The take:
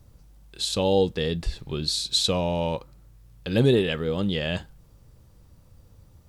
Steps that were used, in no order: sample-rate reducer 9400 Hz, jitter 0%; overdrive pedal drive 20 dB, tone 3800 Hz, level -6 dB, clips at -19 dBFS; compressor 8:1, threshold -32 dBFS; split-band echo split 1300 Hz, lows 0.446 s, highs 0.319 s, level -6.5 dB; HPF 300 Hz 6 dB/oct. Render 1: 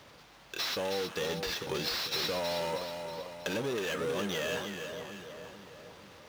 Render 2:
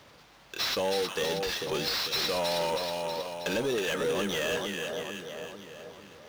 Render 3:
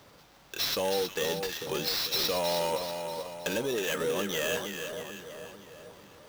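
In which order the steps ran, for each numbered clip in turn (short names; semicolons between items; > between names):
sample-rate reducer > overdrive pedal > HPF > compressor > split-band echo; sample-rate reducer > HPF > compressor > split-band echo > overdrive pedal; compressor > HPF > overdrive pedal > split-band echo > sample-rate reducer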